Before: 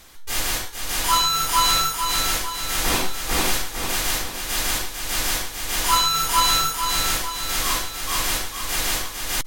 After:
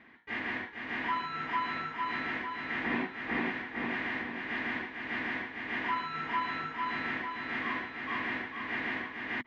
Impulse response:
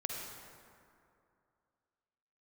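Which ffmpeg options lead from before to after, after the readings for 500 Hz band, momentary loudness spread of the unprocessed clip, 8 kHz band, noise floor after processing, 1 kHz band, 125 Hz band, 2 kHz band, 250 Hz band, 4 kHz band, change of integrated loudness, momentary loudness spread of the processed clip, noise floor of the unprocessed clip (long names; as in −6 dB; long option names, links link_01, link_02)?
−9.5 dB, 8 LU, below −40 dB, −46 dBFS, −11.0 dB, −14.0 dB, −4.0 dB, −2.5 dB, −23.0 dB, −13.0 dB, 3 LU, −33 dBFS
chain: -af "acompressor=threshold=-20dB:ratio=6,highpass=180,equalizer=frequency=240:width_type=q:width=4:gain=10,equalizer=frequency=540:width_type=q:width=4:gain=-9,equalizer=frequency=820:width_type=q:width=4:gain=-4,equalizer=frequency=1300:width_type=q:width=4:gain=-8,equalizer=frequency=1900:width_type=q:width=4:gain=8,lowpass=frequency=2200:width=0.5412,lowpass=frequency=2200:width=1.3066,volume=-3.5dB"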